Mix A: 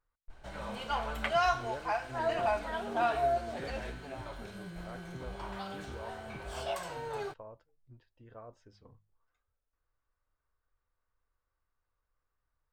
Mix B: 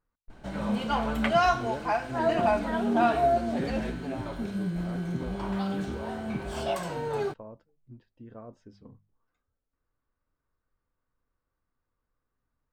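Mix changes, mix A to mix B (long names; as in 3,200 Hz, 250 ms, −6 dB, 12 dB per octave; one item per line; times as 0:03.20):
background +3.5 dB
master: add parametric band 220 Hz +14 dB 1.5 octaves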